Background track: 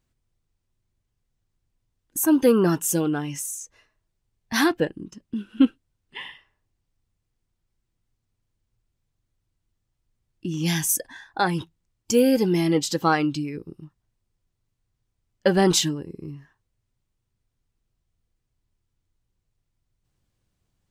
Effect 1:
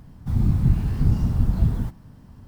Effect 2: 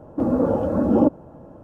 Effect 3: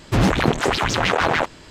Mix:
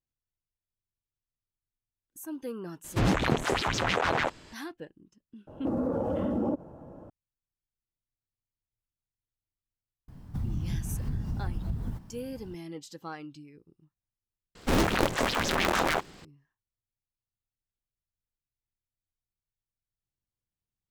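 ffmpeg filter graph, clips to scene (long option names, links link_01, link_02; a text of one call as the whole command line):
ffmpeg -i bed.wav -i cue0.wav -i cue1.wav -i cue2.wav -filter_complex "[3:a]asplit=2[link_01][link_02];[0:a]volume=-20dB[link_03];[2:a]acompressor=threshold=-21dB:ratio=6:attack=3.2:release=140:knee=1:detection=peak[link_04];[1:a]acompressor=threshold=-28dB:ratio=4:attack=22:release=137:knee=1:detection=rms[link_05];[link_02]aeval=exprs='val(0)*sgn(sin(2*PI*140*n/s))':channel_layout=same[link_06];[link_01]atrim=end=1.7,asetpts=PTS-STARTPTS,volume=-8dB,afade=type=in:duration=0.004:curve=hsin,afade=type=out:start_time=1.696:duration=0.004:curve=hsin,adelay=2840[link_07];[link_04]atrim=end=1.63,asetpts=PTS-STARTPTS,volume=-4dB,afade=type=in:duration=0.004:curve=hsin,afade=type=out:start_time=1.626:duration=0.004:curve=hsin,adelay=5470[link_08];[link_05]atrim=end=2.47,asetpts=PTS-STARTPTS,volume=-3dB,afade=type=in:duration=0.004:curve=hsin,afade=type=out:start_time=2.466:duration=0.004:curve=hsin,adelay=10080[link_09];[link_06]atrim=end=1.7,asetpts=PTS-STARTPTS,volume=-7.5dB,afade=type=in:duration=0.004:curve=hsin,afade=type=out:start_time=1.696:duration=0.004:curve=hsin,adelay=14550[link_10];[link_03][link_07][link_08][link_09][link_10]amix=inputs=5:normalize=0" out.wav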